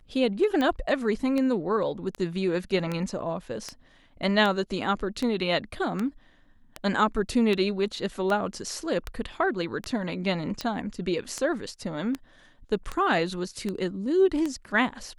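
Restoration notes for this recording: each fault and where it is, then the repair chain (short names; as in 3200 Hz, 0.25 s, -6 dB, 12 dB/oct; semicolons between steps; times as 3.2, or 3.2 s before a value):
tick 78 rpm -16 dBFS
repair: de-click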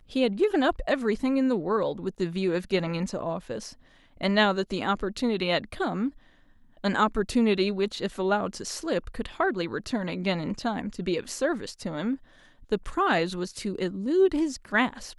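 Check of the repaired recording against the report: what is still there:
none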